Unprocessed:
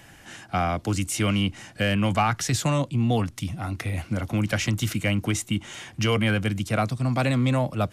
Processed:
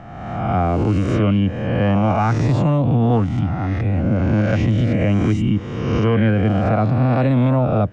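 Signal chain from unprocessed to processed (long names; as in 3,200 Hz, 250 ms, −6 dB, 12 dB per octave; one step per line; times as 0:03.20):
peak hold with a rise ahead of every peak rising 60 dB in 1.42 s
tilt shelving filter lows +8.5 dB, about 1,400 Hz
brickwall limiter −8.5 dBFS, peak gain reduction 5 dB
high-frequency loss of the air 150 metres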